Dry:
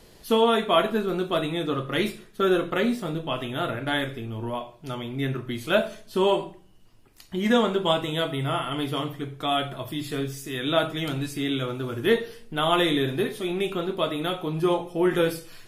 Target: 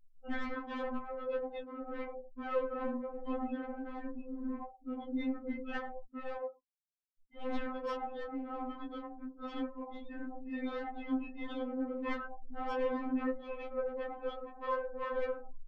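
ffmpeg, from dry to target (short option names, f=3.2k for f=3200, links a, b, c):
-filter_complex "[0:a]asettb=1/sr,asplit=3[a][b][c];[a]atrim=end=1.354[d];[b]atrim=start=1.35:end=1.81,asetpts=PTS-STARTPTS,afade=t=in:d=0.004:c=qsin,afade=t=out:st=0.456:d=0.004:c=qsin,acrossover=split=490|3100[e][f][g];[e]acompressor=threshold=-34dB:ratio=4[h];[f]acompressor=threshold=-31dB:ratio=4[i];[g]acompressor=threshold=-42dB:ratio=4[j];[h][i][j]amix=inputs=3:normalize=0[k];[c]atrim=start=1.806[l];[d][k]acrossfade=d=0.004:c1=hsin:c2=qsin[m];[m][l]acrossfade=d=0.004:c1=qsin:c2=hsin,asplit=3[n][o][p];[n]afade=t=out:st=6.02:d=0.02[q];[o]highpass=f=160:w=0.5412,highpass=f=160:w=1.3066,equalizer=f=190:t=q:w=4:g=-5,equalizer=f=310:t=q:w=4:g=-7,equalizer=f=500:t=q:w=4:g=-7,equalizer=f=780:t=q:w=4:g=-6,equalizer=f=2.1k:t=q:w=4:g=5,equalizer=f=3.3k:t=q:w=4:g=-5,lowpass=f=5.1k:w=0.5412,lowpass=f=5.1k:w=1.3066,afade=t=in:st=6.02:d=0.02,afade=t=out:st=7.35:d=0.02[r];[p]afade=t=in:st=7.35:d=0.02[s];[q][r][s]amix=inputs=3:normalize=0,acrossover=split=670|3100[t][u][v];[t]aeval=exprs='0.0708*(abs(mod(val(0)/0.0708+3,4)-2)-1)':c=same[w];[u]acompressor=threshold=-40dB:ratio=16[x];[v]acrusher=samples=40:mix=1:aa=0.000001:lfo=1:lforange=40:lforate=2.5[y];[w][x][y]amix=inputs=3:normalize=0,adynamicequalizer=threshold=0.00631:dfrequency=250:dqfactor=1.8:tfrequency=250:tqfactor=1.8:attack=5:release=100:ratio=0.375:range=1.5:mode=cutabove:tftype=bell,asplit=2[z][aa];[aa]asplit=4[ab][ac][ad][ae];[ab]adelay=85,afreqshift=150,volume=-10.5dB[af];[ac]adelay=170,afreqshift=300,volume=-19.4dB[ag];[ad]adelay=255,afreqshift=450,volume=-28.2dB[ah];[ae]adelay=340,afreqshift=600,volume=-37.1dB[ai];[af][ag][ah][ai]amix=inputs=4:normalize=0[aj];[z][aj]amix=inputs=2:normalize=0,flanger=delay=7.9:depth=7.3:regen=-55:speed=0.29:shape=triangular,afftfilt=real='re*gte(hypot(re,im),0.0126)':imag='im*gte(hypot(re,im),0.0126)':win_size=1024:overlap=0.75,flanger=delay=19.5:depth=4.6:speed=2,asoftclip=type=tanh:threshold=-31.5dB,afftfilt=real='re*3.46*eq(mod(b,12),0)':imag='im*3.46*eq(mod(b,12),0)':win_size=2048:overlap=0.75,volume=5dB"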